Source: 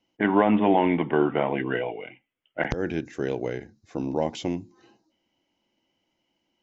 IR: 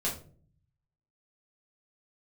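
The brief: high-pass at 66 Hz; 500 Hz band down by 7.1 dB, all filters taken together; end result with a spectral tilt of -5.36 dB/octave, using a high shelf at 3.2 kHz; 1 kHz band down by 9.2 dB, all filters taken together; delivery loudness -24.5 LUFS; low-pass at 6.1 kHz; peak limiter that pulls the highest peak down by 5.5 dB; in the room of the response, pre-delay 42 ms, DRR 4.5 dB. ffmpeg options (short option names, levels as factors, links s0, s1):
-filter_complex "[0:a]highpass=66,lowpass=6100,equalizer=f=500:t=o:g=-7.5,equalizer=f=1000:t=o:g=-8.5,highshelf=f=3200:g=-7,alimiter=limit=0.119:level=0:latency=1,asplit=2[s0][s1];[1:a]atrim=start_sample=2205,adelay=42[s2];[s1][s2]afir=irnorm=-1:irlink=0,volume=0.299[s3];[s0][s3]amix=inputs=2:normalize=0,volume=1.88"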